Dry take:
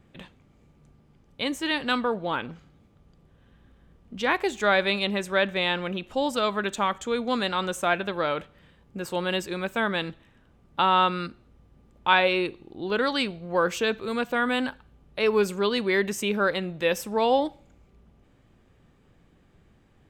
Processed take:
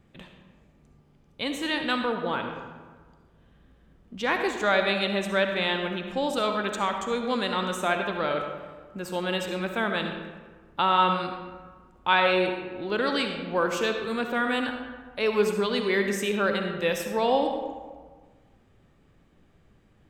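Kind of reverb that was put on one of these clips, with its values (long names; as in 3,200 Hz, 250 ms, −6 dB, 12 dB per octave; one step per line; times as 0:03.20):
comb and all-pass reverb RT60 1.5 s, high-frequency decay 0.55×, pre-delay 25 ms, DRR 4.5 dB
level −2 dB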